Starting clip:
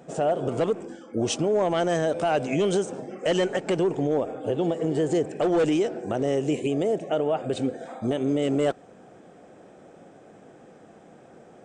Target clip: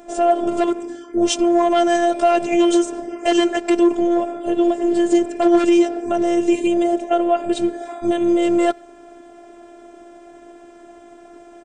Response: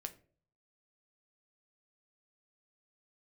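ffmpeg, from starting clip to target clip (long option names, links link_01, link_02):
-filter_complex "[0:a]asplit=2[link_01][link_02];[link_02]adelay=90,highpass=300,lowpass=3400,asoftclip=type=hard:threshold=-24.5dB,volume=-28dB[link_03];[link_01][link_03]amix=inputs=2:normalize=0,acontrast=62,afftfilt=real='hypot(re,im)*cos(PI*b)':imag='0':win_size=512:overlap=0.75,volume=4.5dB"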